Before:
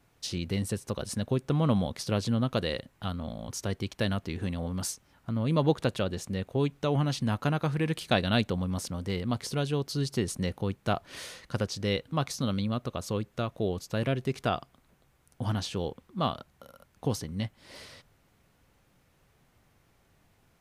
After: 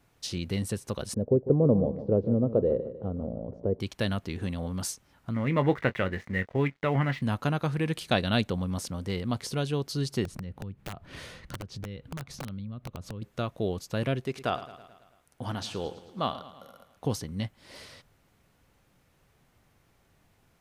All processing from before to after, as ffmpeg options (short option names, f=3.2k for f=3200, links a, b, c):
-filter_complex "[0:a]asettb=1/sr,asplit=3[a][b][c];[a]atrim=end=1.144[d];[b]atrim=start=1.14:end=3.8,asetpts=PTS-STARTPTS,afade=t=in:d=0.004:c=qsin,afade=t=out:st=2.656:d=0.004:c=qsin,lowpass=f=470:t=q:w=3.4,aecho=1:1:150|300|450|600:0.237|0.102|0.0438|0.0189,atrim=end_sample=117306[e];[c]atrim=start=3.796[f];[d][e]acrossfade=d=0.004:c1=hsin:c2=qsin[g];[g][f]acrossfade=d=0.004:c1=qsin:c2=hsin,asettb=1/sr,asplit=3[h][i][j];[h]atrim=end=5.344[k];[i]atrim=start=5.34:end=7.22,asetpts=PTS-STARTPTS,afade=t=in:d=0.004:c=qsin,afade=t=out:st=1.876:d=0.004:c=qsin,lowpass=f=2k:t=q:w=8.9,aeval=exprs='sgn(val(0))*max(abs(val(0))-0.002,0)':c=same,asplit=2[l][m];[m]adelay=22,volume=-12.5dB[n];[l][n]amix=inputs=2:normalize=0,atrim=end_sample=82908[o];[j]atrim=start=7.216[p];[k][o]acrossfade=d=0.004:c1=hsin:c2=qsin[q];[q][p]acrossfade=d=0.004:c1=qsin:c2=hsin,asettb=1/sr,asplit=3[r][s][t];[r]atrim=end=10.254[u];[s]atrim=start=10.25:end=13.22,asetpts=PTS-STARTPTS,afade=t=in:d=0.004:c=qsin,afade=t=out:st=2.966:d=0.004:c=qsin,bass=f=250:g=11,treble=f=4k:g=-9,acompressor=threshold=-36dB:ratio=6:attack=3.2:release=140:knee=1:detection=peak,aeval=exprs='(mod(33.5*val(0)+1,2)-1)/33.5':c=same[v];[t]atrim=start=13.216[w];[u][v]acrossfade=d=0.004:c1=hsin:c2=qsin[x];[x][w]acrossfade=d=0.004:c1=qsin:c2=hsin,asettb=1/sr,asplit=3[y][z][aa];[y]atrim=end=14.204[ab];[z]atrim=start=14.2:end=17.05,asetpts=PTS-STARTPTS,afade=t=in:d=0.004:c=qsin,afade=t=out:st=2.846:d=0.004:c=qsin,bass=f=250:g=-6,treble=f=4k:g=-2,aecho=1:1:109|218|327|436|545|654:0.178|0.105|0.0619|0.0365|0.0215|0.0127,atrim=end_sample=125685[ac];[aa]atrim=start=17.046[ad];[ab][ac]acrossfade=d=0.004:c1=hsin:c2=qsin[ae];[ae][ad]acrossfade=d=0.004:c1=qsin:c2=hsin"